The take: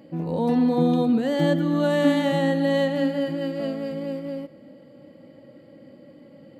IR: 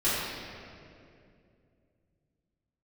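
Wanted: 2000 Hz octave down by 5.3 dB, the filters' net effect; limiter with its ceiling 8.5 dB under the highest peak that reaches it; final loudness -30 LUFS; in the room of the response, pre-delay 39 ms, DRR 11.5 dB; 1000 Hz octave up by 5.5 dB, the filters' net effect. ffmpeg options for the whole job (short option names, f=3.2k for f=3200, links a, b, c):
-filter_complex "[0:a]equalizer=f=1k:t=o:g=9,equalizer=f=2k:t=o:g=-9,alimiter=limit=-16dB:level=0:latency=1,asplit=2[a][b];[1:a]atrim=start_sample=2205,adelay=39[c];[b][c]afir=irnorm=-1:irlink=0,volume=-24.5dB[d];[a][d]amix=inputs=2:normalize=0,volume=-5.5dB"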